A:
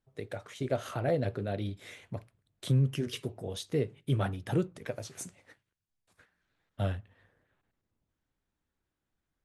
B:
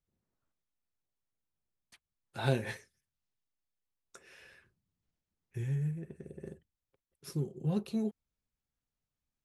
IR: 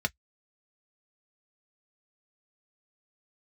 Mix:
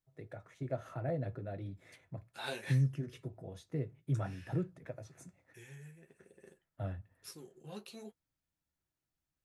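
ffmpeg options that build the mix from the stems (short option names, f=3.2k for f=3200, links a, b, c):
-filter_complex "[0:a]lowshelf=f=210:g=8,volume=-14dB,asplit=2[a][b];[b]volume=-6.5dB[c];[1:a]highpass=f=1.4k:p=1,flanger=delay=8.8:depth=6.3:regen=-36:speed=1.1:shape=triangular,volume=3dB[d];[2:a]atrim=start_sample=2205[e];[c][e]afir=irnorm=-1:irlink=0[f];[a][d][f]amix=inputs=3:normalize=0"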